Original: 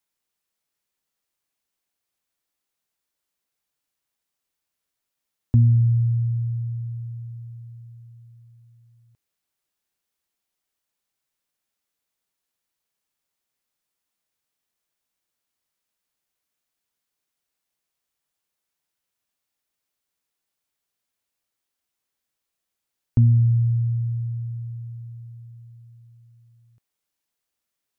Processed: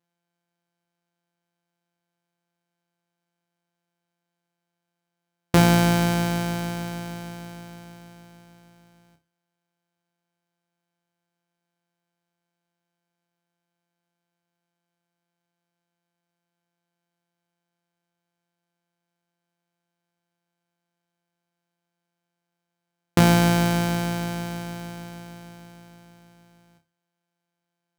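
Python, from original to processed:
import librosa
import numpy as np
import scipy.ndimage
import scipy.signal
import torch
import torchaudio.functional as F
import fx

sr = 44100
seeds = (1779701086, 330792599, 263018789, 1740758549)

y = np.r_[np.sort(x[:len(x) // 256 * 256].reshape(-1, 256), axis=1).ravel(), x[len(x) // 256 * 256:]]
y = scipy.signal.sosfilt(scipy.signal.butter(2, 100.0, 'highpass', fs=sr, output='sos'), y)
y = fx.room_flutter(y, sr, wall_m=5.2, rt60_s=0.27)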